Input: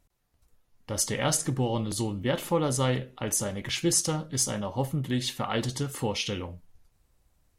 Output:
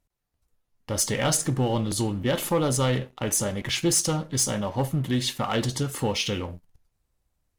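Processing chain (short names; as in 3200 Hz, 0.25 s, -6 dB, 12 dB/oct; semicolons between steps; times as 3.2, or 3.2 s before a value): 2.27–2.68 high shelf 6500 Hz +6 dB; sample leveller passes 2; gain -3.5 dB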